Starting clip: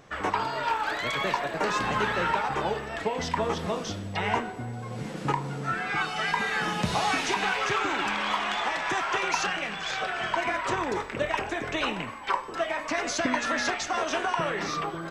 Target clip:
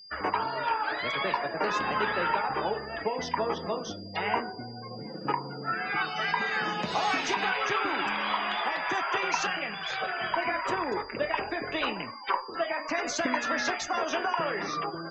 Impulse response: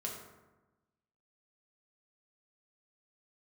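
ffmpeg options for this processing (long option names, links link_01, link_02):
-filter_complex "[0:a]afftdn=noise_reduction=27:noise_floor=-38,acrossover=split=210[link_01][link_02];[link_01]acompressor=threshold=-47dB:ratio=6[link_03];[link_03][link_02]amix=inputs=2:normalize=0,aeval=exprs='val(0)+0.00501*sin(2*PI*4800*n/s)':channel_layout=same,volume=-1dB"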